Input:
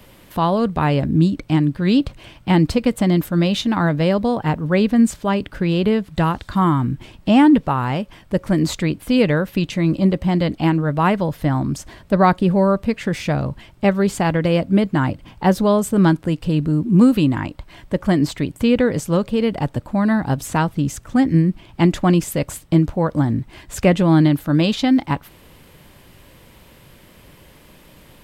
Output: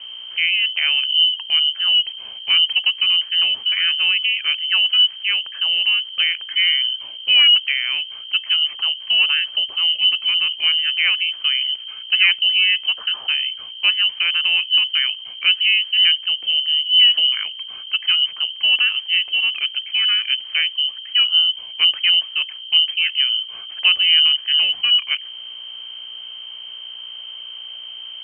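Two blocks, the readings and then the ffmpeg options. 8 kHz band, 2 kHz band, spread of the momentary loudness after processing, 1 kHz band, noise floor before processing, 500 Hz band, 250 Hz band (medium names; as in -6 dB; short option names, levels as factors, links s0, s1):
under -40 dB, +9.0 dB, 16 LU, -18.5 dB, -48 dBFS, under -30 dB, under -40 dB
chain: -filter_complex "[0:a]acrossover=split=1700[s0][s1];[s1]acompressor=threshold=0.00631:ratio=6[s2];[s0][s2]amix=inputs=2:normalize=0,aeval=exprs='val(0)+0.0251*(sin(2*PI*60*n/s)+sin(2*PI*2*60*n/s)/2+sin(2*PI*3*60*n/s)/3+sin(2*PI*4*60*n/s)/4+sin(2*PI*5*60*n/s)/5)':c=same,lowpass=f=2700:t=q:w=0.5098,lowpass=f=2700:t=q:w=0.6013,lowpass=f=2700:t=q:w=0.9,lowpass=f=2700:t=q:w=2.563,afreqshift=-3200,volume=0.891"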